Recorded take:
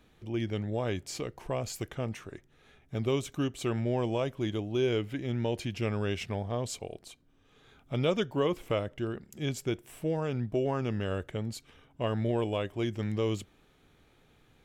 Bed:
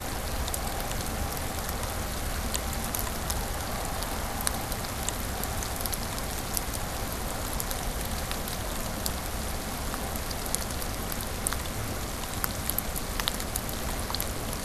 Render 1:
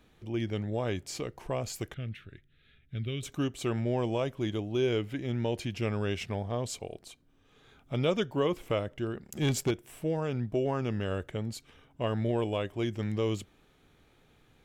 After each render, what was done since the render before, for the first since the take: 1.94–3.23 EQ curve 120 Hz 0 dB, 430 Hz -12 dB, 640 Hz -15 dB, 980 Hz -27 dB, 1400 Hz -5 dB, 3700 Hz 0 dB, 6100 Hz -22 dB, 13000 Hz -12 dB; 9.26–9.71 sample leveller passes 2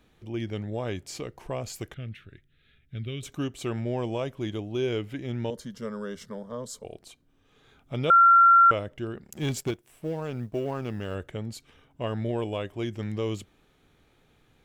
5.5–6.85 fixed phaser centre 500 Hz, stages 8; 8.1–8.71 bleep 1370 Hz -12.5 dBFS; 9.33–11.15 G.711 law mismatch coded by A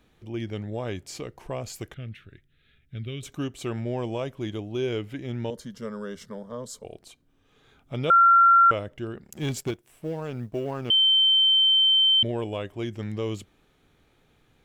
10.9–12.23 bleep 3100 Hz -16 dBFS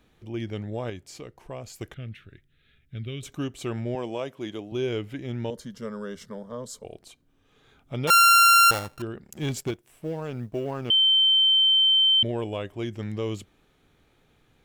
0.9–1.81 gain -5 dB; 3.95–4.72 Bessel high-pass 230 Hz; 8.07–9.02 sample sorter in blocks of 32 samples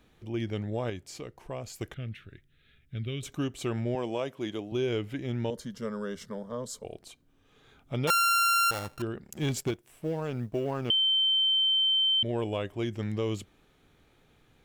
compressor 5:1, threshold -24 dBFS, peak gain reduction 8.5 dB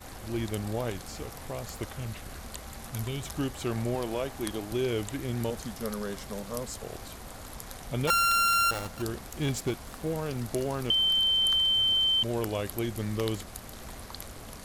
add bed -11 dB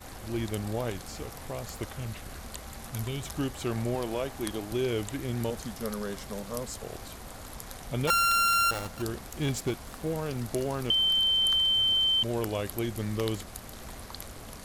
nothing audible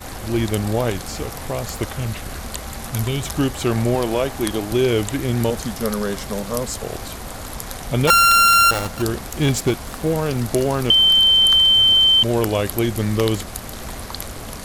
gain +11.5 dB; limiter -3 dBFS, peak gain reduction 1.5 dB

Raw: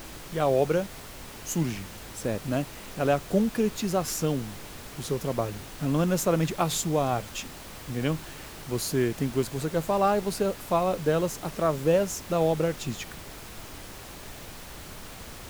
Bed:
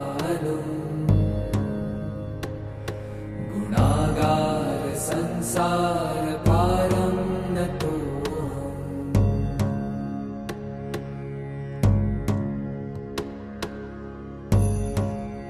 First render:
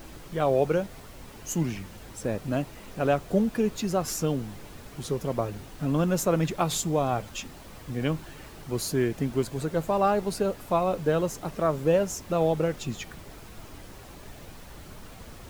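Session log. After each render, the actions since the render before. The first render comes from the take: denoiser 7 dB, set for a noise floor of -43 dBFS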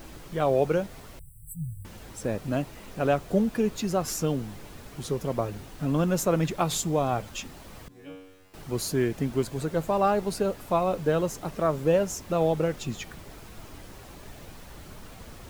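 1.19–1.85 brick-wall FIR band-stop 160–7700 Hz; 7.88–8.54 resonator 94 Hz, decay 0.85 s, mix 100%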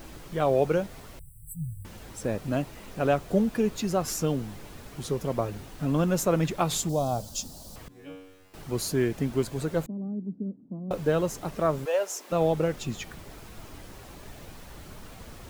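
6.89–7.76 EQ curve 230 Hz 0 dB, 390 Hz -7 dB, 630 Hz +1 dB, 2200 Hz -19 dB, 4500 Hz +7 dB; 9.86–10.91 Butterworth band-pass 220 Hz, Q 2; 11.84–12.31 HPF 640 Hz -> 290 Hz 24 dB/oct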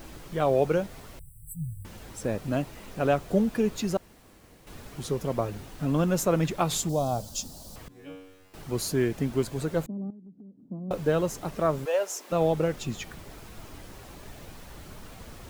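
3.97–4.67 room tone; 10.1–10.63 compressor, threshold -46 dBFS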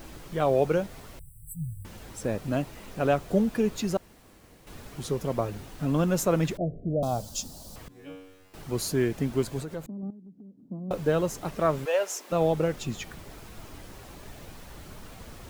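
6.57–7.03 steep low-pass 680 Hz 96 dB/oct; 9.6–10.03 compressor 2.5:1, threshold -35 dBFS; 11.36–12.26 dynamic EQ 2300 Hz, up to +4 dB, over -42 dBFS, Q 0.8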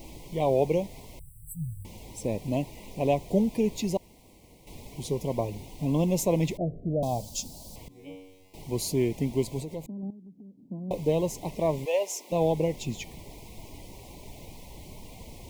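dynamic EQ 1700 Hz, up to +5 dB, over -54 dBFS, Q 6.4; elliptic band-stop 1000–2100 Hz, stop band 60 dB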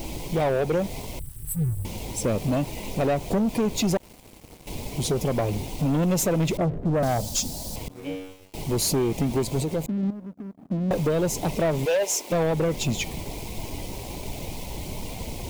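compressor, threshold -26 dBFS, peak gain reduction 8 dB; sample leveller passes 3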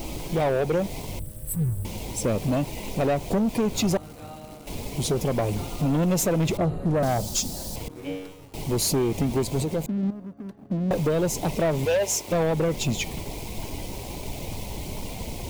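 add bed -20.5 dB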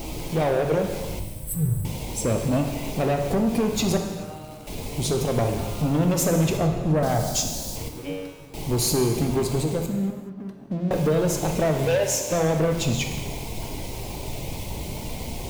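non-linear reverb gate 0.45 s falling, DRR 3.5 dB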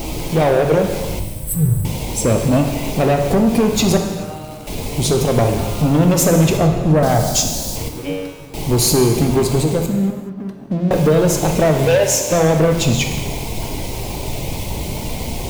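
gain +8 dB

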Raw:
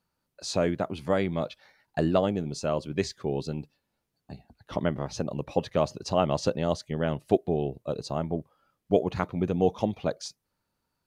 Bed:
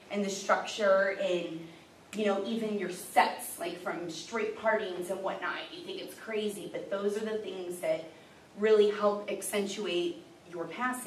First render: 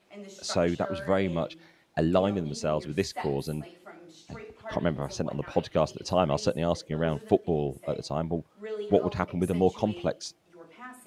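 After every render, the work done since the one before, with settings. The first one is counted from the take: add bed -12 dB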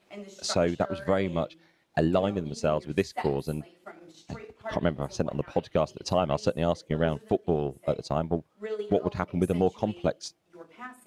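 transient shaper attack +5 dB, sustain -6 dB; limiter -11.5 dBFS, peak gain reduction 9 dB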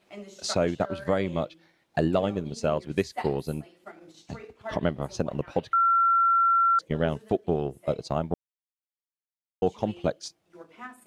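5.73–6.79 bleep 1360 Hz -18 dBFS; 8.34–9.62 mute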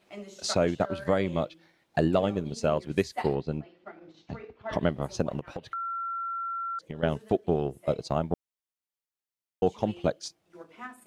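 3.35–4.73 Gaussian blur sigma 2 samples; 5.39–7.03 compressor, threshold -33 dBFS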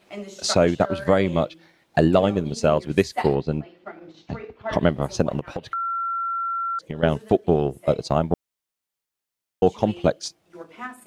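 gain +7 dB

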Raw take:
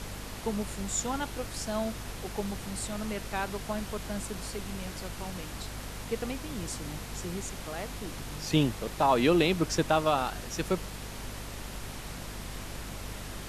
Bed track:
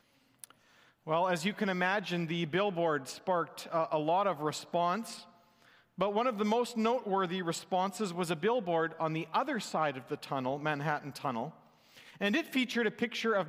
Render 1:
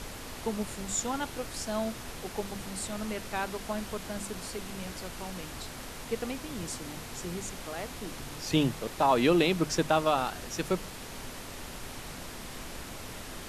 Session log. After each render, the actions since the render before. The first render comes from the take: notches 50/100/150/200 Hz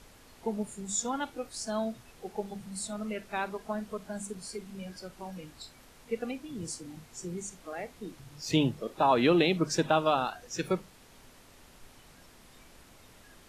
noise print and reduce 14 dB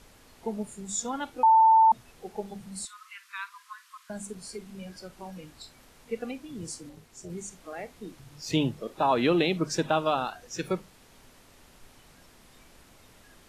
1.43–1.92 bleep 891 Hz -14.5 dBFS; 2.85–4.1 Chebyshev high-pass 1000 Hz, order 8; 6.89–7.3 AM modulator 260 Hz, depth 70%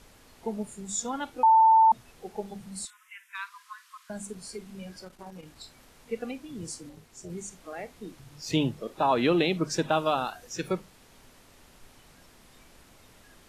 2.9–3.35 fixed phaser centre 1200 Hz, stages 6; 5.02–5.56 core saturation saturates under 420 Hz; 9.91–10.53 high shelf 8700 Hz +7 dB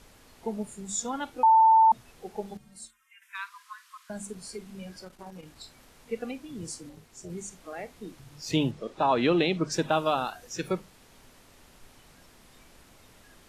2.57–3.22 metallic resonator 67 Hz, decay 0.33 s, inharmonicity 0.03; 8.71–9.72 LPF 7500 Hz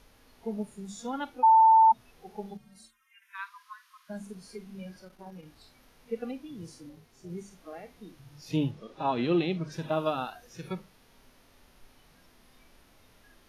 bell 7700 Hz -12.5 dB 0.25 oct; harmonic-percussive split percussive -15 dB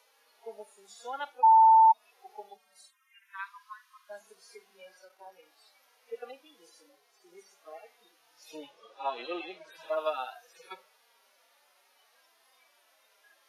median-filter separation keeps harmonic; HPF 520 Hz 24 dB/oct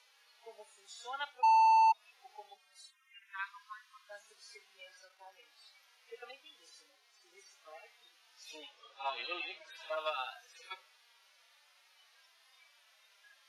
in parallel at -7 dB: hard clip -25.5 dBFS, distortion -7 dB; on the sum: band-pass 3300 Hz, Q 0.66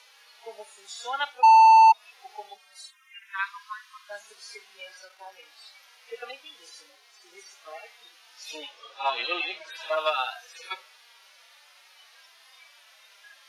gain +11 dB

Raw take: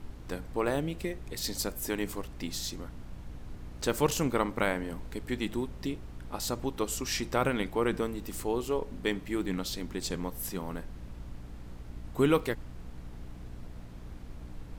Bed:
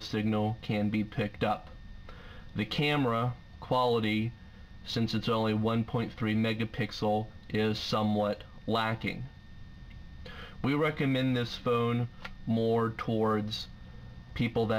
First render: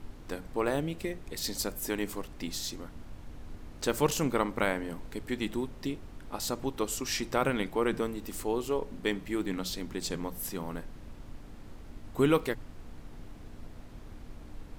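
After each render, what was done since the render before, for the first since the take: notches 60/120/180 Hz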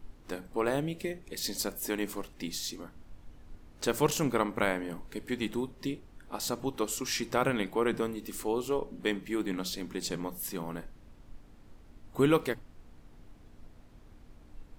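noise print and reduce 8 dB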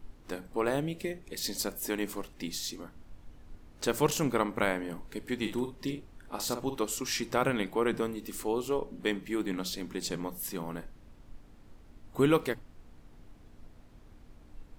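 5.37–6.77 doubler 49 ms -7.5 dB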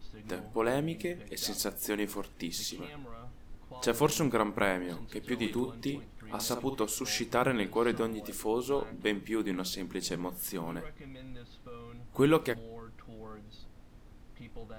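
add bed -19.5 dB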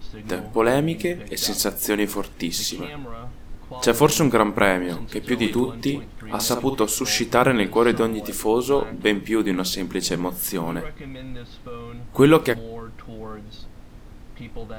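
gain +11 dB; limiter -2 dBFS, peak gain reduction 1 dB

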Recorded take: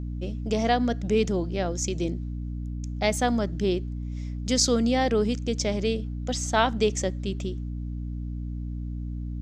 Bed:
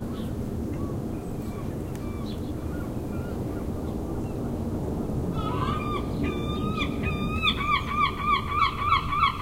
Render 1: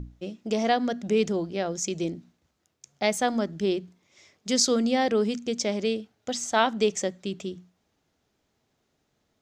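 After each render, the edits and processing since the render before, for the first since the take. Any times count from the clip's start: notches 60/120/180/240/300 Hz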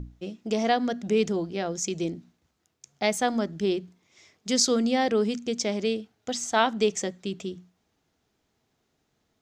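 notch 570 Hz, Q 12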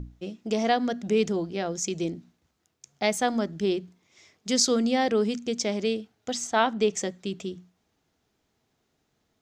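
6.47–6.93 high shelf 5000 Hz -8.5 dB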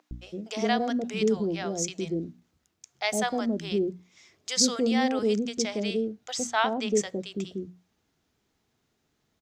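bands offset in time highs, lows 0.11 s, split 630 Hz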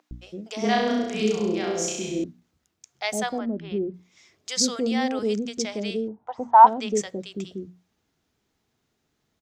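0.6–2.24 flutter echo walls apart 5.7 m, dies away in 0.92 s; 3.38–3.94 air absorption 390 m; 6.08–6.67 synth low-pass 930 Hz, resonance Q 11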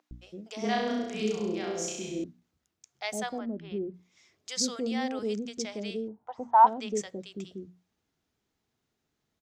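gain -6.5 dB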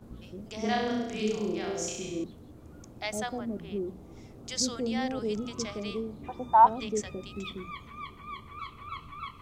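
add bed -18 dB

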